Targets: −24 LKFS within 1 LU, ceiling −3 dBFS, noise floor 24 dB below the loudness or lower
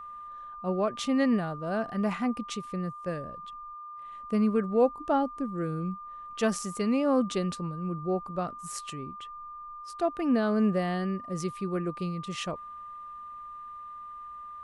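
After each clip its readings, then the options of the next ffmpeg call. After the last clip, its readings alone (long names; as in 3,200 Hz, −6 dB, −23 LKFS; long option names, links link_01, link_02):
interfering tone 1,200 Hz; level of the tone −40 dBFS; integrated loudness −30.0 LKFS; sample peak −13.5 dBFS; target loudness −24.0 LKFS
→ -af "bandreject=frequency=1200:width=30"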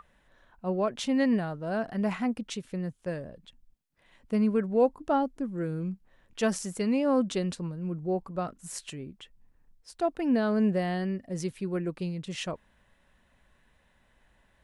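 interfering tone none found; integrated loudness −30.0 LKFS; sample peak −14.0 dBFS; target loudness −24.0 LKFS
→ -af "volume=6dB"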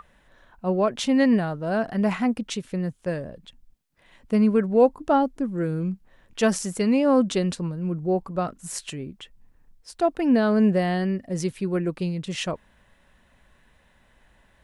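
integrated loudness −24.0 LKFS; sample peak −8.0 dBFS; background noise floor −61 dBFS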